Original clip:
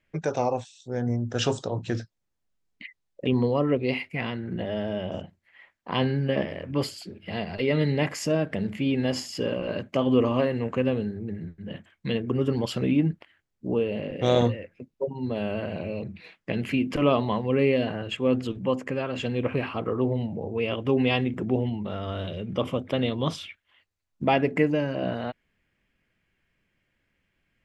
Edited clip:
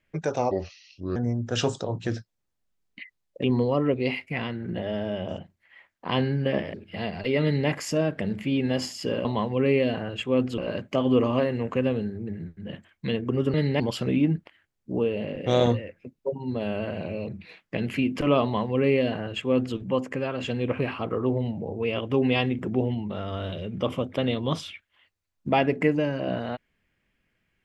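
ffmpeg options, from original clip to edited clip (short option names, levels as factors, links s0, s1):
-filter_complex "[0:a]asplit=8[s0][s1][s2][s3][s4][s5][s6][s7];[s0]atrim=end=0.514[s8];[s1]atrim=start=0.51:end=0.99,asetpts=PTS-STARTPTS,asetrate=32634,aresample=44100,atrim=end_sample=28605,asetpts=PTS-STARTPTS[s9];[s2]atrim=start=0.986:end=6.572[s10];[s3]atrim=start=7.078:end=9.592[s11];[s4]atrim=start=17.178:end=18.512[s12];[s5]atrim=start=9.588:end=12.552[s13];[s6]atrim=start=7.768:end=8.032[s14];[s7]atrim=start=12.548[s15];[s8][s9]acrossfade=d=0.004:c1=hsin:c2=hsin[s16];[s16][s10]acrossfade=d=0.004:c1=hsin:c2=hsin[s17];[s17][s11]acrossfade=d=0.004:c1=hsin:c2=hsin[s18];[s18][s12]acrossfade=d=0.004:c1=hsin:c2=hsin[s19];[s19][s13]acrossfade=d=0.004:c1=hsin:c2=hsin[s20];[s20][s14]acrossfade=d=0.004:c1=hsin:c2=hsin[s21];[s21][s15]acrossfade=d=0.004:c1=hsin:c2=hsin"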